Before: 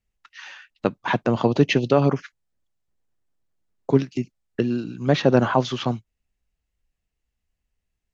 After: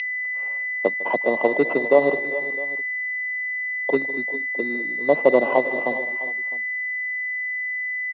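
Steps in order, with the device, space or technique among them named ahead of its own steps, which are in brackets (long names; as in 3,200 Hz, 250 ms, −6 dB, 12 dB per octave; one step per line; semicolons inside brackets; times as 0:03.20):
high-pass filter 140 Hz 24 dB per octave
0:03.95–0:04.90: parametric band 730 Hz −5.5 dB 1.8 octaves
multi-tap delay 154/206/390/409/657 ms −18/−18.5/−18.5/−16/−19 dB
toy sound module (linearly interpolated sample-rate reduction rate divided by 6×; switching amplifier with a slow clock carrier 2,000 Hz; loudspeaker in its box 540–4,500 Hz, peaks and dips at 570 Hz +3 dB, 810 Hz −3 dB, 1,300 Hz −9 dB, 1,800 Hz −10 dB, 2,800 Hz +10 dB, 4,000 Hz +4 dB)
level +6.5 dB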